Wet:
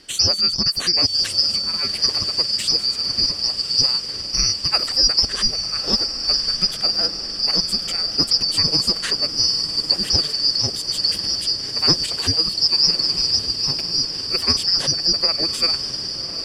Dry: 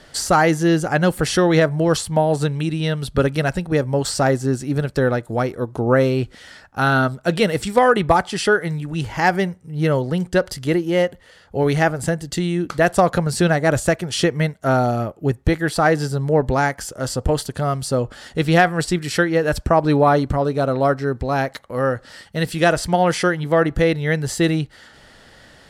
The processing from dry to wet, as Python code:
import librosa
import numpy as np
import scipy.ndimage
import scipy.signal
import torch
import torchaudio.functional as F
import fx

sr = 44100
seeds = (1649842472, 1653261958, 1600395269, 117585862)

p1 = fx.band_shuffle(x, sr, order='2341')
p2 = p1 + fx.echo_diffused(p1, sr, ms=1788, feedback_pct=68, wet_db=-9.0, dry=0)
p3 = fx.stretch_grains(p2, sr, factor=0.64, grain_ms=100.0)
y = F.gain(torch.from_numpy(p3), -1.0).numpy()